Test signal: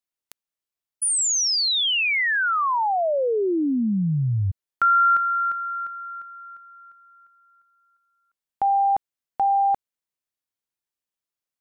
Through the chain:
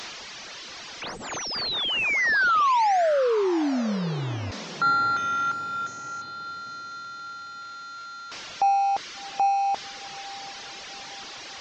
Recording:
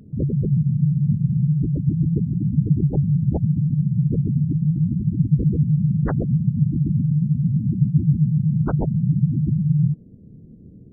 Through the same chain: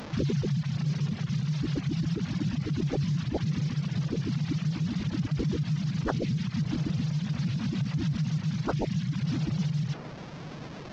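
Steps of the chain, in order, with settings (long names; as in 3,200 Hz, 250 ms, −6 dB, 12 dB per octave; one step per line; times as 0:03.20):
linear delta modulator 32 kbit/s, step −32 dBFS
brickwall limiter −16.5 dBFS
low-shelf EQ 160 Hz −10.5 dB
reverb reduction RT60 1.1 s
feedback delay with all-pass diffusion 715 ms, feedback 50%, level −15.5 dB
level +2 dB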